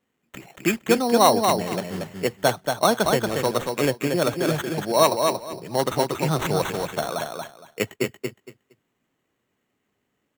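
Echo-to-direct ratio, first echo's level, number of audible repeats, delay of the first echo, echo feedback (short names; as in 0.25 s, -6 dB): -4.5 dB, -4.5 dB, 3, 0.232 s, 20%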